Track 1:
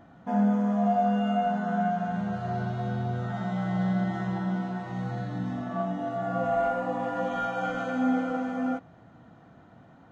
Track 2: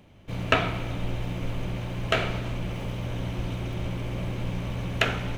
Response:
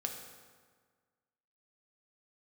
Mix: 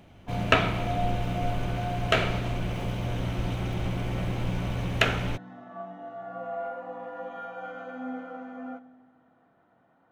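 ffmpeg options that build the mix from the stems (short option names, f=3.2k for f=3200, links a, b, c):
-filter_complex "[0:a]bass=f=250:g=-12,treble=f=4k:g=-13,volume=-10.5dB,asplit=2[a][b];[b]volume=-9.5dB[c];[1:a]volume=1dB[d];[2:a]atrim=start_sample=2205[e];[c][e]afir=irnorm=-1:irlink=0[f];[a][d][f]amix=inputs=3:normalize=0"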